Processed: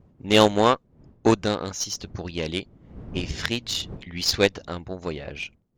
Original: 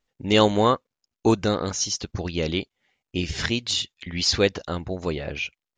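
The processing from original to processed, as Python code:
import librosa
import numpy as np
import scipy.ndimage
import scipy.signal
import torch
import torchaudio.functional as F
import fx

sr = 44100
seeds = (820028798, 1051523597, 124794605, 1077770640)

y = fx.dmg_wind(x, sr, seeds[0], corner_hz=200.0, level_db=-40.0)
y = fx.cheby_harmonics(y, sr, harmonics=(6, 7), levels_db=(-31, -22), full_scale_db=-3.5)
y = y * 10.0 ** (2.0 / 20.0)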